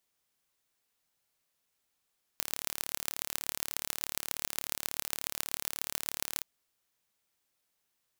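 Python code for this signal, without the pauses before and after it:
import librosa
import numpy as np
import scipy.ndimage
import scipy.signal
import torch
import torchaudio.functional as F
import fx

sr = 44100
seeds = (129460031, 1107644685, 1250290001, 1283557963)

y = fx.impulse_train(sr, length_s=4.03, per_s=36.6, accent_every=5, level_db=-3.0)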